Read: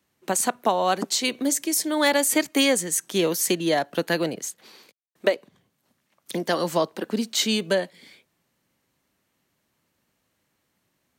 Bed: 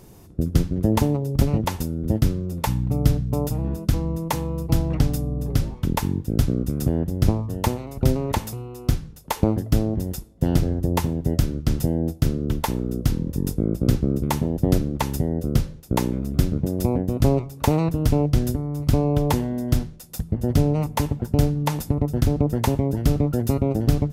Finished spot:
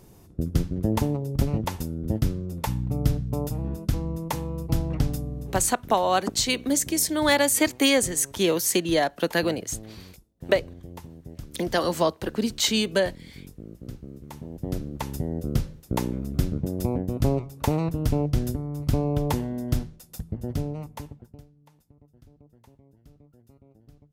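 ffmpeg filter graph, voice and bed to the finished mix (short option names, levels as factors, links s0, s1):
-filter_complex "[0:a]adelay=5250,volume=1[s0];[1:a]volume=3.35,afade=t=out:st=5.11:d=0.74:silence=0.177828,afade=t=in:st=14.29:d=1.17:silence=0.177828,afade=t=out:st=19.76:d=1.68:silence=0.0316228[s1];[s0][s1]amix=inputs=2:normalize=0"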